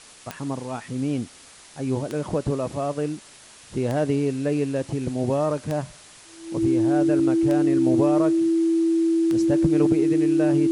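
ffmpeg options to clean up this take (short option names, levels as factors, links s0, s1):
-af "adeclick=t=4,bandreject=f=330:w=30,afwtdn=0.0056"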